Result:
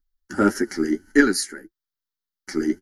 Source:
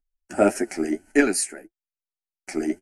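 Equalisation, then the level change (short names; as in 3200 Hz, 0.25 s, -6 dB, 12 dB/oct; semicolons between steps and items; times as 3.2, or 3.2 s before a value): bell 8400 Hz +7 dB 0.47 oct; fixed phaser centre 2500 Hz, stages 6; +5.5 dB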